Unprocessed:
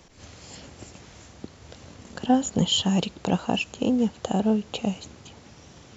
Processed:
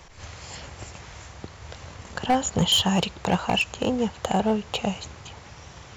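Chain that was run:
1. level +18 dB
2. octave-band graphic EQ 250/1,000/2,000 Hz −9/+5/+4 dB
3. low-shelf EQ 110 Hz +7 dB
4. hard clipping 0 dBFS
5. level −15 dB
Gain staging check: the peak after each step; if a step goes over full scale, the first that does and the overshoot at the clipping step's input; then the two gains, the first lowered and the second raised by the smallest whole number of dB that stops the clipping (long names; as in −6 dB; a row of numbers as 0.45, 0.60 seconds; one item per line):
+9.0, +8.5, +8.5, 0.0, −15.0 dBFS
step 1, 8.5 dB
step 1 +9 dB, step 5 −6 dB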